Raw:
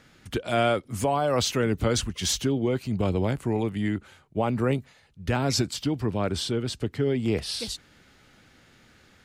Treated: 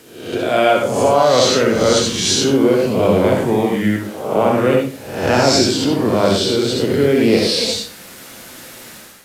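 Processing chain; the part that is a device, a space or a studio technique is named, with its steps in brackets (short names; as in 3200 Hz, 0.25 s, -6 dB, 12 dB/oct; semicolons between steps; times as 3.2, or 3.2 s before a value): spectral swells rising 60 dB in 0.75 s; filmed off a television (BPF 160–7700 Hz; bell 540 Hz +5.5 dB 0.55 oct; reverb RT60 0.40 s, pre-delay 58 ms, DRR 0 dB; white noise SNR 26 dB; AGC gain up to 11.5 dB; AAC 96 kbps 32000 Hz)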